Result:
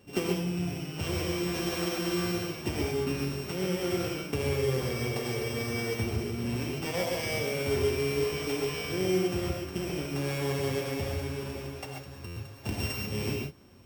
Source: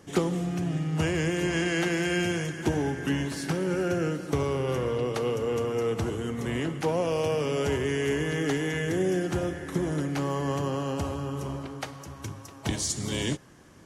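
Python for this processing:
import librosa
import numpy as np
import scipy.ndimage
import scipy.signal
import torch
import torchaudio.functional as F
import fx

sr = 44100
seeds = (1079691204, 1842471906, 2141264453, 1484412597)

p1 = np.r_[np.sort(x[:len(x) // 16 * 16].reshape(-1, 16), axis=1).ravel(), x[len(x) // 16 * 16:]]
p2 = fx.notch_comb(p1, sr, f0_hz=160.0)
p3 = fx.rev_gated(p2, sr, seeds[0], gate_ms=160, shape='rising', drr_db=-0.5)
p4 = fx.sample_hold(p3, sr, seeds[1], rate_hz=2500.0, jitter_pct=0)
p5 = p3 + (p4 * librosa.db_to_amplitude(-10.0))
p6 = fx.buffer_glitch(p5, sr, at_s=(12.26,), block=512, repeats=8)
y = p6 * librosa.db_to_amplitude(-6.0)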